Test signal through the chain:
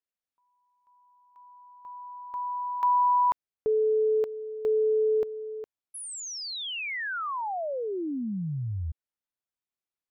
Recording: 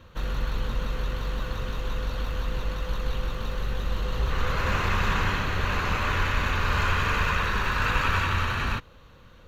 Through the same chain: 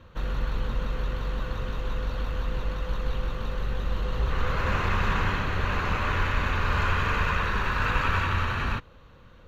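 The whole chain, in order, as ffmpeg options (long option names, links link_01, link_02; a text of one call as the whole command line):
ffmpeg -i in.wav -af "highshelf=frequency=4000:gain=-8.5" out.wav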